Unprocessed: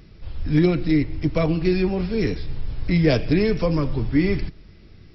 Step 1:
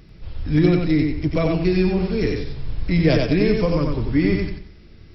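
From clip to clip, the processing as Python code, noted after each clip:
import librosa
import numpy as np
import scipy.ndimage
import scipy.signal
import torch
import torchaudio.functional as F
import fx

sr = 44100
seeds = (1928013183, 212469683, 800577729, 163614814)

y = fx.echo_feedback(x, sr, ms=92, feedback_pct=30, wet_db=-3.5)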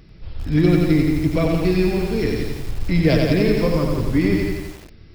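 y = fx.echo_crushed(x, sr, ms=171, feedback_pct=35, bits=6, wet_db=-5.5)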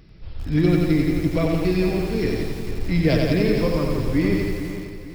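y = fx.echo_feedback(x, sr, ms=451, feedback_pct=38, wet_db=-11.5)
y = y * librosa.db_to_amplitude(-2.5)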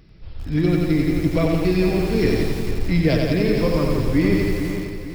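y = fx.rider(x, sr, range_db=3, speed_s=0.5)
y = y * librosa.db_to_amplitude(2.0)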